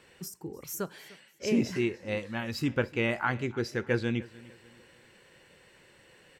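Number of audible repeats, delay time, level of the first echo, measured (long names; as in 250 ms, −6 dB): 2, 300 ms, −21.0 dB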